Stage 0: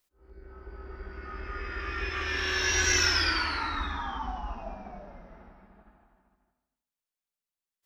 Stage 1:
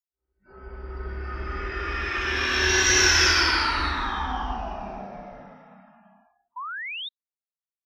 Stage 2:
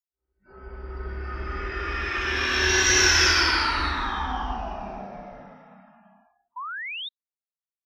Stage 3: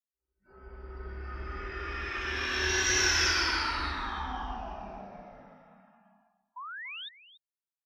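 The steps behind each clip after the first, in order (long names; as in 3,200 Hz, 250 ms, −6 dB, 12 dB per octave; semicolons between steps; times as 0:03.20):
reverb whose tail is shaped and stops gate 370 ms flat, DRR −3.5 dB; sound drawn into the spectrogram rise, 0:06.56–0:07.09, 950–3,800 Hz −35 dBFS; noise reduction from a noise print of the clip's start 29 dB; level +1.5 dB
no processing that can be heard
single-tap delay 286 ms −15.5 dB; level −7.5 dB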